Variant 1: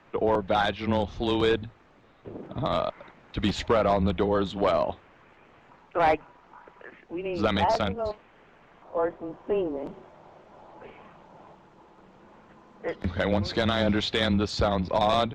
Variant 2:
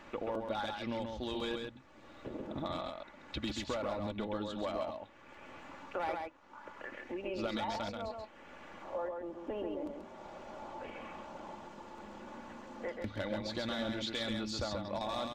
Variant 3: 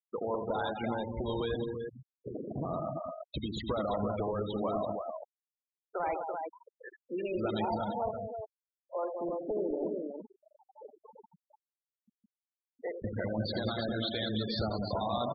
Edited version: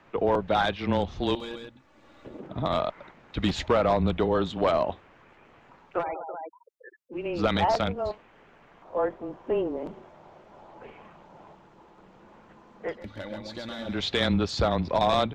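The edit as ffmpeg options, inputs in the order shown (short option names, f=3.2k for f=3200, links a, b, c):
-filter_complex "[1:a]asplit=2[a][b];[0:a]asplit=4[c][d][e][f];[c]atrim=end=1.352[g];[a]atrim=start=1.348:end=2.402[h];[d]atrim=start=2.398:end=6.04[i];[2:a]atrim=start=5.98:end=7.17[j];[e]atrim=start=7.11:end=13.09[k];[b]atrim=start=12.85:end=14.07[l];[f]atrim=start=13.83[m];[g][h]acrossfade=d=0.004:c1=hsin:c2=hsin[n];[n][i]acrossfade=d=0.004:c1=hsin:c2=hsin[o];[o][j]acrossfade=d=0.06:c1=tri:c2=tri[p];[p][k]acrossfade=d=0.06:c1=tri:c2=tri[q];[q][l]acrossfade=d=0.24:c1=tri:c2=tri[r];[r][m]acrossfade=d=0.24:c1=tri:c2=tri"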